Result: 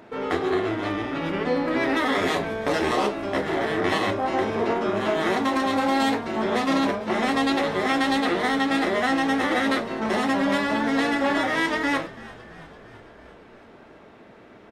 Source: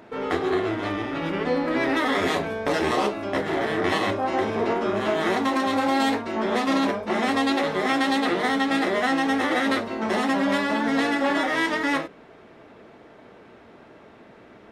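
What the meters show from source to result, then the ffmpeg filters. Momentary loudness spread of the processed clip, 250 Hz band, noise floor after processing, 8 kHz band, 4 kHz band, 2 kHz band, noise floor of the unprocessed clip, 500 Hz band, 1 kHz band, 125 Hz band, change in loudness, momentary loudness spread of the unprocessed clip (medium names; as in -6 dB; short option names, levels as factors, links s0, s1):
4 LU, 0.0 dB, -49 dBFS, 0.0 dB, 0.0 dB, 0.0 dB, -49 dBFS, 0.0 dB, 0.0 dB, +0.5 dB, 0.0 dB, 4 LU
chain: -filter_complex "[0:a]asplit=7[s0][s1][s2][s3][s4][s5][s6];[s1]adelay=335,afreqshift=-56,volume=0.106[s7];[s2]adelay=670,afreqshift=-112,volume=0.0676[s8];[s3]adelay=1005,afreqshift=-168,volume=0.0432[s9];[s4]adelay=1340,afreqshift=-224,volume=0.0279[s10];[s5]adelay=1675,afreqshift=-280,volume=0.0178[s11];[s6]adelay=2010,afreqshift=-336,volume=0.0114[s12];[s0][s7][s8][s9][s10][s11][s12]amix=inputs=7:normalize=0"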